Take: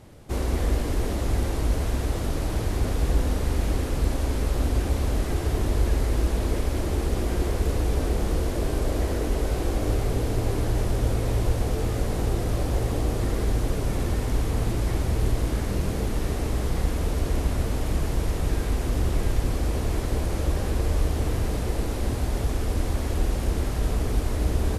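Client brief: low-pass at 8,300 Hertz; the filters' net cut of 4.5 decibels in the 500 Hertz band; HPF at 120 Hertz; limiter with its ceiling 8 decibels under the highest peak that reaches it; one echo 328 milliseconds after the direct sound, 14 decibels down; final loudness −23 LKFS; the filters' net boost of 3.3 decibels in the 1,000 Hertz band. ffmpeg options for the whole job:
ffmpeg -i in.wav -af "highpass=120,lowpass=8300,equalizer=frequency=500:width_type=o:gain=-7.5,equalizer=frequency=1000:width_type=o:gain=7,alimiter=level_in=2dB:limit=-24dB:level=0:latency=1,volume=-2dB,aecho=1:1:328:0.2,volume=12dB" out.wav

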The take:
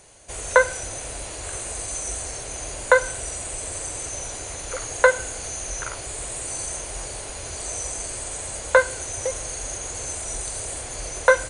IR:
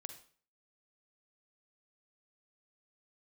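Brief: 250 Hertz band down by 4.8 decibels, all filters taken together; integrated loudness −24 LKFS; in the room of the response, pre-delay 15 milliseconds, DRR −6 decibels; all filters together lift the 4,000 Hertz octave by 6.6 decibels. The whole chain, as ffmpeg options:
-filter_complex "[0:a]equalizer=frequency=250:width_type=o:gain=-7.5,equalizer=frequency=4000:width_type=o:gain=8,asplit=2[link_01][link_02];[1:a]atrim=start_sample=2205,adelay=15[link_03];[link_02][link_03]afir=irnorm=-1:irlink=0,volume=10.5dB[link_04];[link_01][link_04]amix=inputs=2:normalize=0,volume=-6dB"

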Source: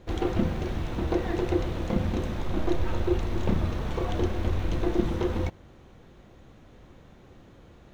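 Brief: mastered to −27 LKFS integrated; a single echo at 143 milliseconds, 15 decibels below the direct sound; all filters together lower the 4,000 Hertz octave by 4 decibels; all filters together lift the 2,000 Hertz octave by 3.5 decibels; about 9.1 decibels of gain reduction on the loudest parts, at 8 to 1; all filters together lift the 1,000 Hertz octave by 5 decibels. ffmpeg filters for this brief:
ffmpeg -i in.wav -af "equalizer=frequency=1000:width_type=o:gain=6,equalizer=frequency=2000:width_type=o:gain=4,equalizer=frequency=4000:width_type=o:gain=-7.5,acompressor=threshold=-28dB:ratio=8,aecho=1:1:143:0.178,volume=7.5dB" out.wav

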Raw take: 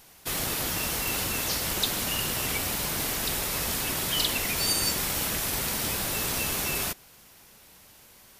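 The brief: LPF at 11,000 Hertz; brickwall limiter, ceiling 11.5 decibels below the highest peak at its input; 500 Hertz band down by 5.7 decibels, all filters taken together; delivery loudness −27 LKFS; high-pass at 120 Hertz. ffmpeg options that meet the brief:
ffmpeg -i in.wav -af "highpass=120,lowpass=11000,equalizer=frequency=500:width_type=o:gain=-7.5,volume=4dB,alimiter=limit=-19.5dB:level=0:latency=1" out.wav

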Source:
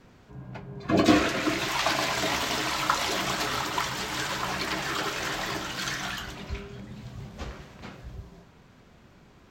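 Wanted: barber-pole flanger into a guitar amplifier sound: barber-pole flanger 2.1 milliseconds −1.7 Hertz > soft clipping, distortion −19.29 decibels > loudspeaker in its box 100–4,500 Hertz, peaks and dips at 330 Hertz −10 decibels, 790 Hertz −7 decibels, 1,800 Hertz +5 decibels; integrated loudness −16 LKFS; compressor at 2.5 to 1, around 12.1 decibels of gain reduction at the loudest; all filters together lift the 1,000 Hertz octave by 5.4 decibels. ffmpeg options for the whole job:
ffmpeg -i in.wav -filter_complex "[0:a]equalizer=frequency=1000:width_type=o:gain=8.5,acompressor=threshold=-32dB:ratio=2.5,asplit=2[link_01][link_02];[link_02]adelay=2.1,afreqshift=-1.7[link_03];[link_01][link_03]amix=inputs=2:normalize=1,asoftclip=threshold=-25.5dB,highpass=100,equalizer=frequency=330:width_type=q:width=4:gain=-10,equalizer=frequency=790:width_type=q:width=4:gain=-7,equalizer=frequency=1800:width_type=q:width=4:gain=5,lowpass=frequency=4500:width=0.5412,lowpass=frequency=4500:width=1.3066,volume=21dB" out.wav

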